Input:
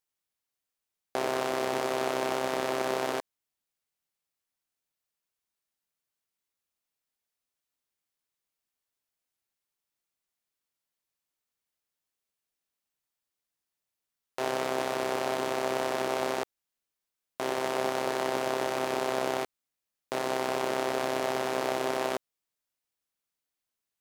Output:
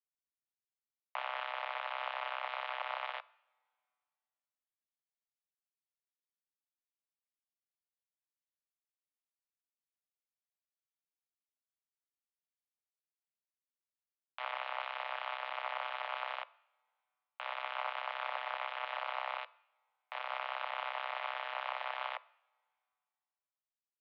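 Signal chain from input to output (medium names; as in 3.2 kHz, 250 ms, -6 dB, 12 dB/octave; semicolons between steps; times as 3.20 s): Chebyshev shaper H 3 -18 dB, 7 -18 dB, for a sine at -14 dBFS; mistuned SSB +360 Hz 160–3200 Hz; two-slope reverb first 0.71 s, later 2.4 s, from -18 dB, DRR 19.5 dB; trim -6 dB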